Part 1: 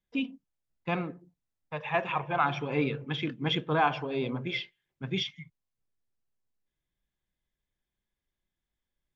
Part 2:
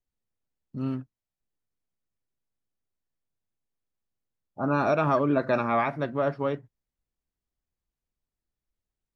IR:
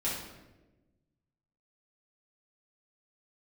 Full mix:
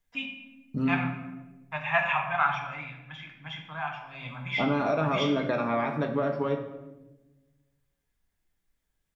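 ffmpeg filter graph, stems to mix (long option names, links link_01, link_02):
-filter_complex "[0:a]firequalizer=gain_entry='entry(110,0);entry(420,-26);entry(610,0);entry(1700,8);entry(4300,-3);entry(7100,7)':delay=0.05:min_phase=1,volume=5dB,afade=type=out:start_time=2.13:duration=0.75:silence=0.251189,afade=type=in:start_time=4.06:duration=0.23:silence=0.334965,asplit=2[link_01][link_02];[link_02]volume=-3dB[link_03];[1:a]acompressor=threshold=-30dB:ratio=10,volume=2.5dB,asplit=2[link_04][link_05];[link_05]volume=-7dB[link_06];[2:a]atrim=start_sample=2205[link_07];[link_03][link_06]amix=inputs=2:normalize=0[link_08];[link_08][link_07]afir=irnorm=-1:irlink=0[link_09];[link_01][link_04][link_09]amix=inputs=3:normalize=0"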